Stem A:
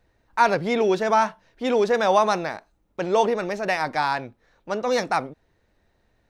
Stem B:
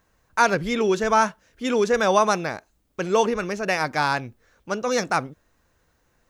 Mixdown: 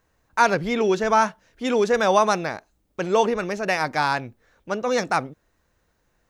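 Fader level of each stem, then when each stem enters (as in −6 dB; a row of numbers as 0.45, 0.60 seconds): −7.5, −3.5 decibels; 0.00, 0.00 seconds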